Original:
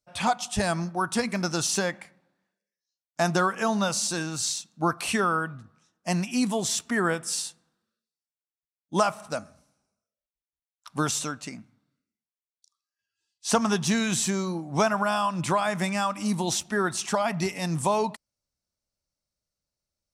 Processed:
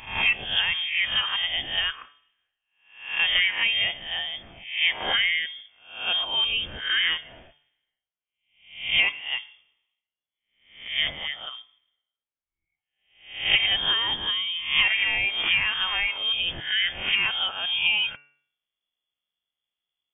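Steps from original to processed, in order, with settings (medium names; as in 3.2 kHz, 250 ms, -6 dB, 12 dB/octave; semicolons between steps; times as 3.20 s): reverse spectral sustain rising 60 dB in 0.54 s; frequency inversion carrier 3.4 kHz; de-hum 144.8 Hz, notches 20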